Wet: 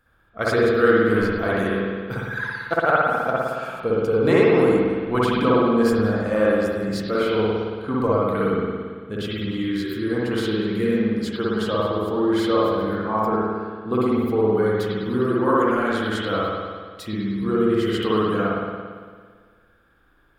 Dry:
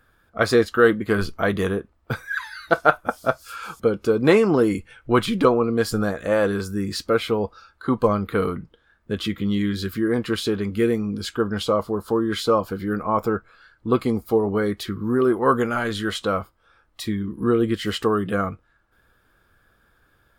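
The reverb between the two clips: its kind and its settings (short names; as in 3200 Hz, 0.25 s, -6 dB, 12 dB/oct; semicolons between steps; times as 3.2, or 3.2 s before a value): spring tank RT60 1.7 s, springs 56 ms, chirp 50 ms, DRR -6.5 dB; gain -6.5 dB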